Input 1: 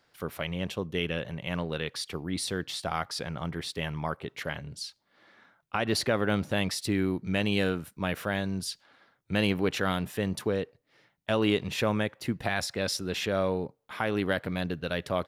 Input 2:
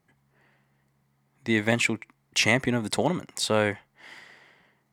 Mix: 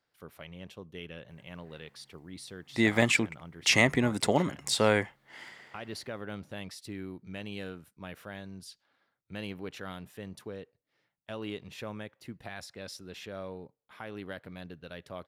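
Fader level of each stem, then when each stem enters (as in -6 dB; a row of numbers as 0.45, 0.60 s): -13.0, -1.0 dB; 0.00, 1.30 s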